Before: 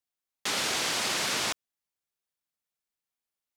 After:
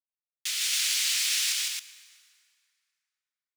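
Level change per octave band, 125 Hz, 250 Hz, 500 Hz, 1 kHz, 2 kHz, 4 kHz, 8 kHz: below −40 dB, below −40 dB, below −35 dB, −17.0 dB, −1.0 dB, +3.5 dB, +5.5 dB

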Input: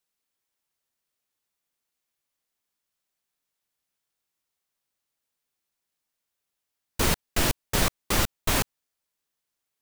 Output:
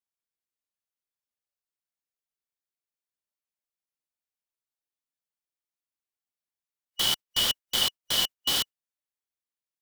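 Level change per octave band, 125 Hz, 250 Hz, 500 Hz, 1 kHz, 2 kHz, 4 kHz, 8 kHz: −16.5, −13.0, −11.0, −8.0, −6.5, +8.0, −2.0 decibels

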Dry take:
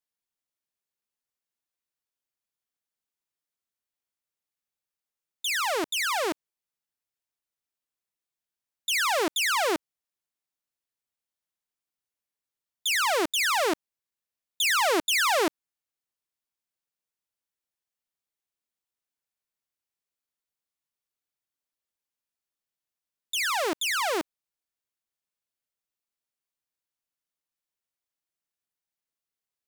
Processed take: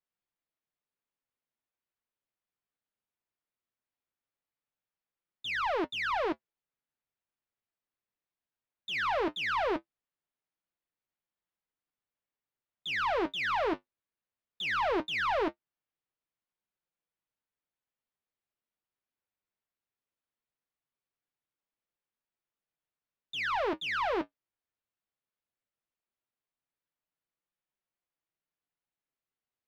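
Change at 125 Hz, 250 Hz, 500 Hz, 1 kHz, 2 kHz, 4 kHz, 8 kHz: can't be measured, −3.0 dB, −3.5 dB, −3.5 dB, −6.0 dB, −10.5 dB, −27.5 dB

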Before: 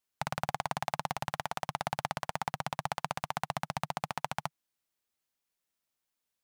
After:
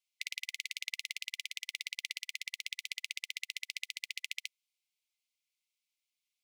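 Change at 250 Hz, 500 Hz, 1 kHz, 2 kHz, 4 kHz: below −40 dB, below −40 dB, below −40 dB, +0.5 dB, +5.0 dB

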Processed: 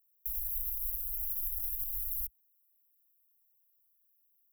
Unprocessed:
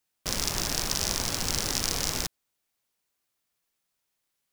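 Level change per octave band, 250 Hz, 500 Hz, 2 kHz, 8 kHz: below −40 dB, below −40 dB, below −40 dB, −19.0 dB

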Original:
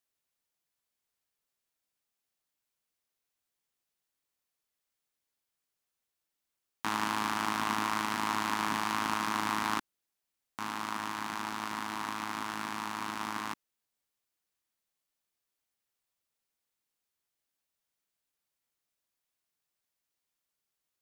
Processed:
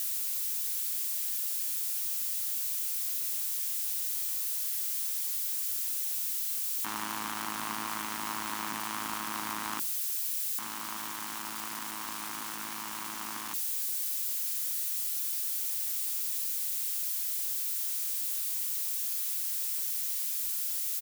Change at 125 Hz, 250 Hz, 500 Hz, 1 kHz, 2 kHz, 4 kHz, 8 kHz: −6.5, −5.5, −5.0, −5.0, −3.5, +3.0, +14.5 decibels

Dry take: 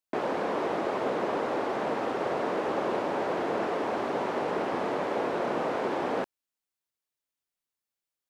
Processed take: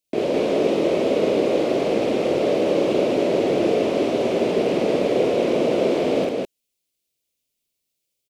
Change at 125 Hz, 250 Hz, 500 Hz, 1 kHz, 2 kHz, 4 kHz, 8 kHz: +11.5 dB, +11.5 dB, +11.0 dB, 0.0 dB, +3.0 dB, +11.5 dB, can't be measured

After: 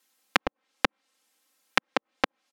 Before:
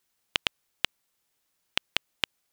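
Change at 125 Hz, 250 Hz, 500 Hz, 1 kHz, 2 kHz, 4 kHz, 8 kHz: +2.5, +13.0, +12.5, +12.0, +4.5, −4.0, 0.0 decibels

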